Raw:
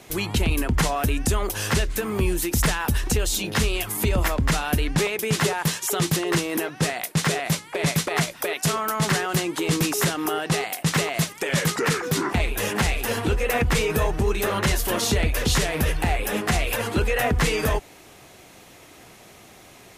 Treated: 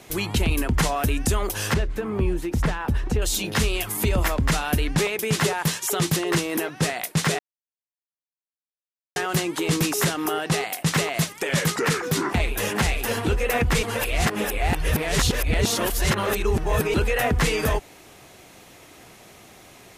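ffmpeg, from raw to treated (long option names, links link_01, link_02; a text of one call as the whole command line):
ffmpeg -i in.wav -filter_complex "[0:a]asettb=1/sr,asplit=3[link_01][link_02][link_03];[link_01]atrim=end=1.744[link_04];[link_02]atrim=start=1.74:end=3.22,asetpts=PTS-STARTPTS,afade=type=in:duration=0.004:curve=qsin,afade=type=out:start_time=1.476:duration=0.004:curve=qsin,lowpass=frequency=1200:poles=1[link_05];[link_03]atrim=start=3.216[link_06];[link_04][link_05]acrossfade=duration=0.004:curve1=hsin:curve2=qsin[link_07];[link_07][link_06]acrossfade=duration=0.004:curve1=qsin:curve2=hsin,asplit=5[link_08][link_09][link_10][link_11][link_12];[link_08]atrim=end=7.39,asetpts=PTS-STARTPTS,afade=type=out:start_time=7.386:duration=0.004:curve=hsin[link_13];[link_09]atrim=start=7.39:end=9.16,asetpts=PTS-STARTPTS,volume=0[link_14];[link_10]atrim=start=9.16:end=13.832,asetpts=PTS-STARTPTS,afade=type=in:duration=0.004:curve=hsin[link_15];[link_11]atrim=start=13.828:end=16.942,asetpts=PTS-STARTPTS,areverse[link_16];[link_12]atrim=start=16.938[link_17];[link_13][link_14][link_15]concat=n=3:v=0:a=1[link_18];[link_18][link_16]acrossfade=duration=0.004:curve1=hsin:curve2=hsin[link_19];[link_19][link_17]acrossfade=duration=0.004:curve1=hsin:curve2=hsin" out.wav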